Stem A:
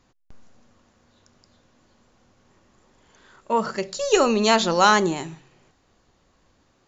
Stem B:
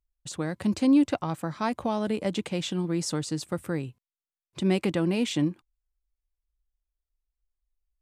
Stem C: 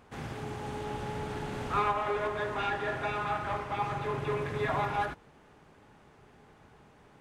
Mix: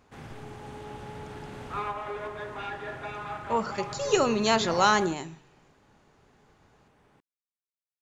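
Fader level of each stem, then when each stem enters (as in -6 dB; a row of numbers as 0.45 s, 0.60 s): -5.5 dB, mute, -4.5 dB; 0.00 s, mute, 0.00 s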